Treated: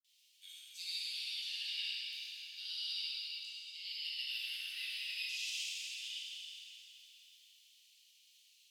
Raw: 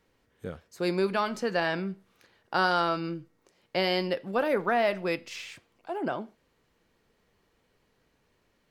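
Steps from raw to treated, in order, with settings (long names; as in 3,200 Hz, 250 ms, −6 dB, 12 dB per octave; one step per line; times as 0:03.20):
Butterworth high-pass 2,800 Hz 48 dB per octave
reversed playback
downward compressor 6 to 1, threshold −51 dBFS, peak gain reduction 19 dB
reversed playback
granular cloud, pitch spread up and down by 0 semitones
dense smooth reverb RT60 3.6 s, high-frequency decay 0.95×, DRR −9.5 dB
level +6 dB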